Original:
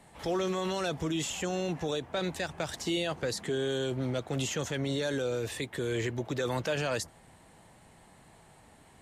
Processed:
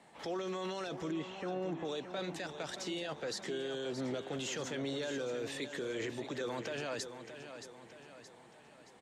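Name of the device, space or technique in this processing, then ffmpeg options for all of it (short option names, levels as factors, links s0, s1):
DJ mixer with the lows and highs turned down: -filter_complex "[0:a]asettb=1/sr,asplit=3[s0][s1][s2];[s0]atrim=end=1.114[s3];[s1]atrim=start=1.11:end=1.85,asetpts=PTS-STARTPTS,afade=t=in:d=0.004:c=qsin,afade=t=out:st=0.736:d=0.004:c=qsin,lowpass=1700[s4];[s2]atrim=start=1.846[s5];[s3][s4]acrossfade=d=0.004:c1=hsin:c2=qsin[s6];[s6][s5]acrossfade=d=0.004:c1=qsin:c2=hsin,acrossover=split=170 7600:gain=0.126 1 0.224[s7][s8][s9];[s7][s8][s9]amix=inputs=3:normalize=0,alimiter=level_in=1.68:limit=0.0631:level=0:latency=1:release=12,volume=0.596,aecho=1:1:623|1246|1869|2492|3115:0.316|0.152|0.0729|0.035|0.0168,volume=0.75"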